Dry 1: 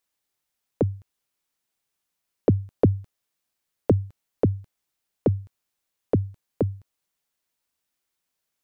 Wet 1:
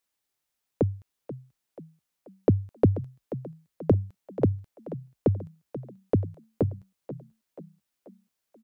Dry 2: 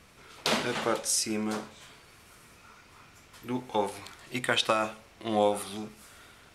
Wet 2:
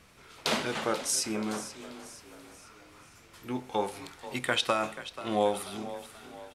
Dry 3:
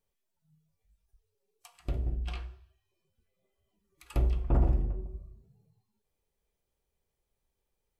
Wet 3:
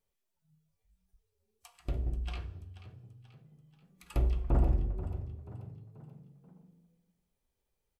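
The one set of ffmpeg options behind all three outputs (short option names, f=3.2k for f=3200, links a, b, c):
-filter_complex "[0:a]asplit=5[a][b][c][d][e];[b]adelay=484,afreqshift=31,volume=-14dB[f];[c]adelay=968,afreqshift=62,volume=-20.6dB[g];[d]adelay=1452,afreqshift=93,volume=-27.1dB[h];[e]adelay=1936,afreqshift=124,volume=-33.7dB[i];[a][f][g][h][i]amix=inputs=5:normalize=0,volume=-1.5dB"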